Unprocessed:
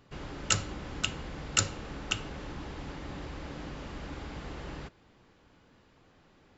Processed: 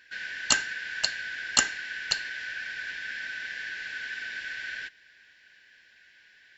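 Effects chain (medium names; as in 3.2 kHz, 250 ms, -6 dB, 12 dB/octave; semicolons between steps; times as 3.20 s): four frequency bands reordered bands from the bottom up 4123; trim +4 dB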